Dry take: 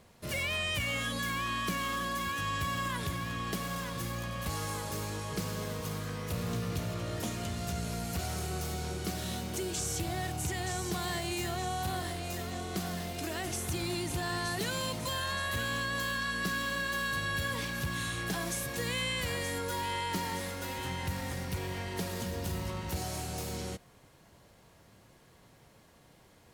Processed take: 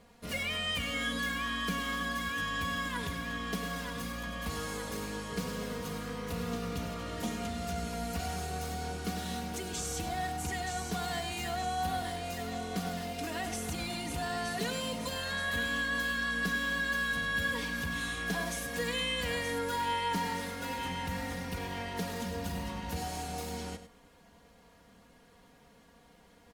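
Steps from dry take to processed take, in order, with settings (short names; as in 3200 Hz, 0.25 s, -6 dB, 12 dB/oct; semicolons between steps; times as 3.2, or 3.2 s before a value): high shelf 5700 Hz -5.5 dB; comb 4.2 ms, depth 75%; echo 0.1 s -11.5 dB; gain -1.5 dB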